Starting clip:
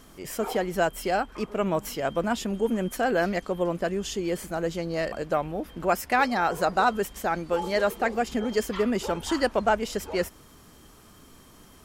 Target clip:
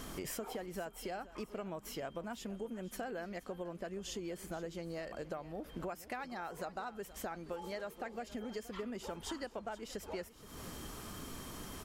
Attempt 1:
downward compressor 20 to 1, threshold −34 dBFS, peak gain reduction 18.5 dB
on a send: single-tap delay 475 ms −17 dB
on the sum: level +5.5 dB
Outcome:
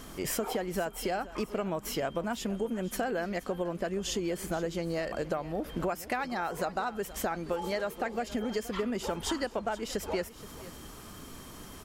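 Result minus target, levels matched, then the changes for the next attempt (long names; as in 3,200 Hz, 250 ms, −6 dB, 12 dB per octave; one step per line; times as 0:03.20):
downward compressor: peak gain reduction −10 dB
change: downward compressor 20 to 1, threshold −44.5 dBFS, peak gain reduction 28 dB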